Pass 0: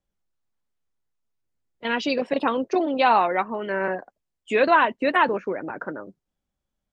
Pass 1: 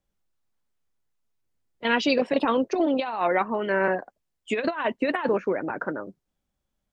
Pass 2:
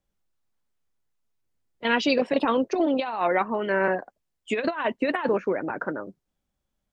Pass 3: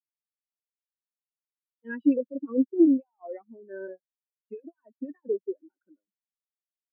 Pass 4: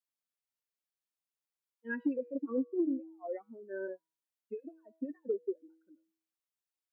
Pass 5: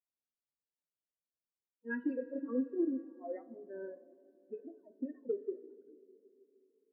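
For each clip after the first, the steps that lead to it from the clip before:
compressor whose output falls as the input rises −22 dBFS, ratio −0.5
no processing that can be heard
dynamic equaliser 780 Hz, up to −6 dB, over −37 dBFS, Q 0.9; every bin expanded away from the loudest bin 4 to 1
low-shelf EQ 140 Hz −10.5 dB; hum removal 161.6 Hz, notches 32; downward compressor 6 to 1, threshold −29 dBFS, peak gain reduction 12.5 dB
spectral magnitudes quantised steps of 15 dB; coupled-rooms reverb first 0.21 s, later 3.6 s, from −19 dB, DRR 8.5 dB; low-pass that shuts in the quiet parts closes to 640 Hz, open at −25.5 dBFS; level −2 dB

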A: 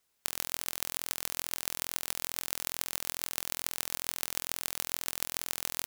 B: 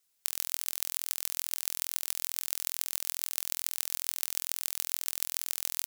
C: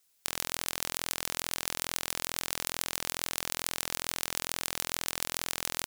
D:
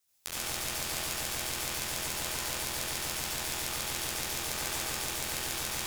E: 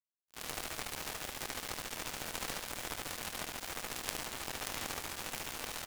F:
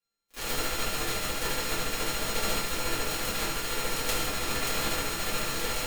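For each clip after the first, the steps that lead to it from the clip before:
high-shelf EQ 2,700 Hz +11.5 dB; level −8.5 dB
floating-point word with a short mantissa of 2 bits; wrap-around overflow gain 9 dB; level +4.5 dB
multi-voice chorus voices 6, 0.89 Hz, delay 14 ms, depth 1.5 ms; convolution reverb RT60 0.70 s, pre-delay 64 ms, DRR −4.5 dB; level −2.5 dB
gap after every zero crossing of 0.19 ms; on a send: single-tap delay 75 ms −7 dB; on the sum: level +3.5 dB
samples sorted by size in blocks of 32 samples; rectangular room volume 35 cubic metres, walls mixed, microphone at 1.9 metres

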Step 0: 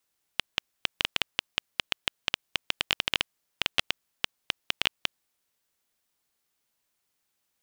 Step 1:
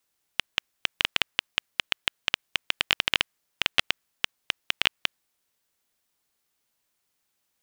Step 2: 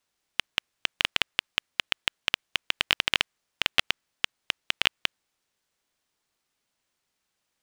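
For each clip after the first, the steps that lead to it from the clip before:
dynamic equaliser 1,800 Hz, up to +4 dB, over −42 dBFS, Q 1; level +1.5 dB
running median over 3 samples

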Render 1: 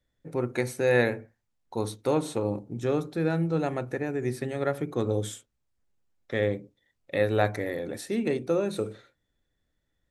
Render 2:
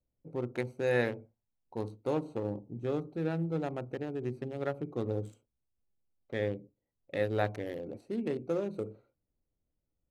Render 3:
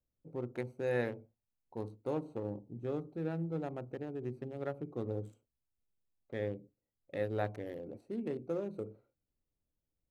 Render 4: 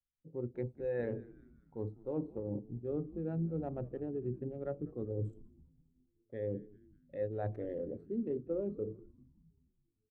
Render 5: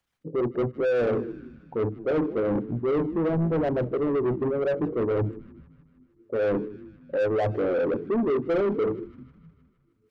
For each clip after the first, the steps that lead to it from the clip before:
adaptive Wiener filter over 25 samples; level −6 dB
parametric band 4,600 Hz −5 dB 2.9 octaves; level −4 dB
reversed playback; downward compressor 4 to 1, threshold −45 dBFS, peak gain reduction 14 dB; reversed playback; echo with shifted repeats 196 ms, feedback 64%, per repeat −90 Hz, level −14 dB; every bin expanded away from the loudest bin 1.5 to 1; level +7.5 dB
spectral envelope exaggerated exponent 1.5; mid-hump overdrive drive 27 dB, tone 1,400 Hz, clips at −24 dBFS; delay with a high-pass on its return 155 ms, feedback 63%, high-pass 1,400 Hz, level −19.5 dB; level +7.5 dB

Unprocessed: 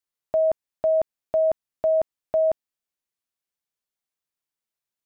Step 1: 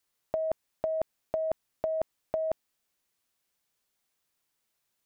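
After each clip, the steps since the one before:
compressor whose output falls as the input rises −26 dBFS, ratio −0.5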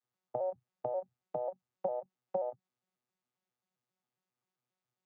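vocoder with an arpeggio as carrier bare fifth, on B2, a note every 134 ms
hollow resonant body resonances 800/1,200 Hz, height 10 dB, ringing for 45 ms
every ending faded ahead of time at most 480 dB per second
level −4 dB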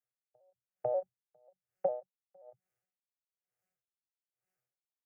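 phaser with its sweep stopped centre 1,000 Hz, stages 6
automatic gain control gain up to 7.5 dB
tremolo with a sine in dB 1.1 Hz, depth 36 dB
level −2.5 dB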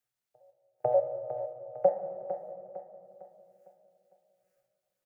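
transient designer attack 0 dB, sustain −12 dB
repeating echo 454 ms, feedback 42%, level −9 dB
convolution reverb RT60 2.5 s, pre-delay 6 ms, DRR 5.5 dB
level +6.5 dB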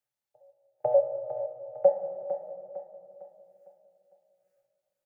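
hollow resonant body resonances 580/830 Hz, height 10 dB, ringing for 50 ms
level −4 dB

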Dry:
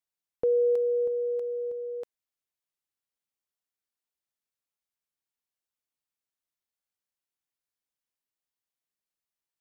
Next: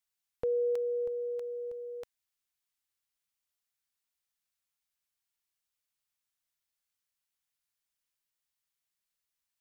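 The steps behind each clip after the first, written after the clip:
parametric band 360 Hz −12 dB 2.4 octaves
level +4.5 dB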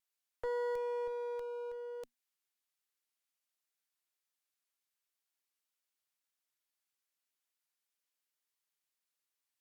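Chebyshev high-pass filter 240 Hz, order 10
asymmetric clip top −43 dBFS, bottom −28 dBFS
pitch vibrato 0.49 Hz 6.7 cents
level −1 dB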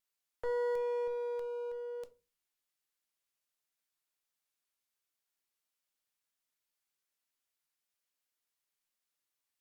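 rectangular room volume 120 cubic metres, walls furnished, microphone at 0.43 metres

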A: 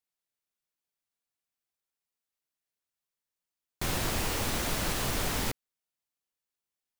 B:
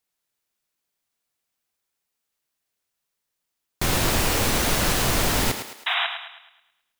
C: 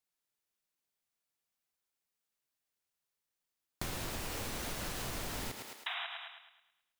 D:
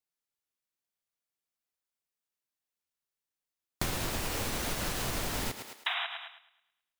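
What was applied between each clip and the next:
sound drawn into the spectrogram noise, 0:05.86–0:06.07, 650–3,900 Hz −32 dBFS; feedback echo with a high-pass in the loop 107 ms, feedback 46%, high-pass 280 Hz, level −8 dB; level +8.5 dB
downward compressor 10 to 1, threshold −28 dBFS, peak gain reduction 11.5 dB; level −8 dB
expander for the loud parts 1.5 to 1, over −60 dBFS; level +8 dB

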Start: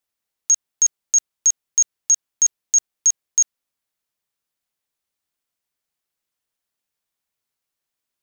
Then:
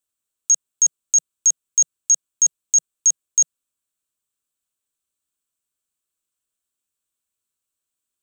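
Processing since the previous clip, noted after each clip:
thirty-one-band graphic EQ 160 Hz −6 dB, 500 Hz −4 dB, 800 Hz −11 dB, 2,000 Hz −11 dB, 5,000 Hz −6 dB, 8,000 Hz +10 dB
level −1.5 dB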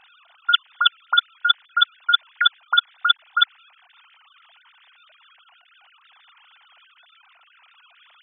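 three sine waves on the formant tracks
level −1 dB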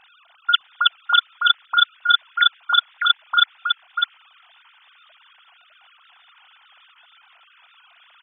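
single-tap delay 606 ms −4 dB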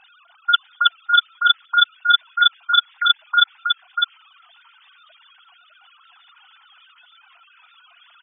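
expanding power law on the bin magnitudes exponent 2
level +1.5 dB

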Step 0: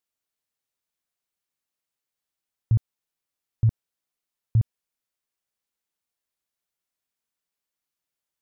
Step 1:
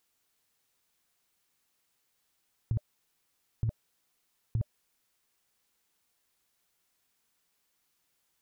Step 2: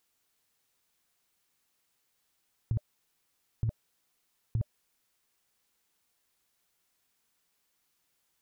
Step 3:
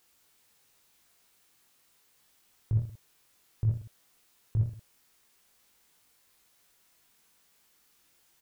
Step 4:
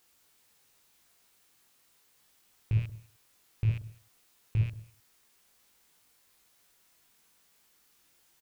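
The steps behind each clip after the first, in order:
notch filter 600 Hz, Q 12; compressor whose output falls as the input rises −25 dBFS, ratio −0.5
no processing that can be heard
brickwall limiter −29 dBFS, peak gain reduction 8 dB; on a send: reverse bouncing-ball delay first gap 20 ms, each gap 1.3×, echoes 5; on the sum: level +7 dB
loose part that buzzes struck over −37 dBFS, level −36 dBFS; single-tap delay 207 ms −23.5 dB

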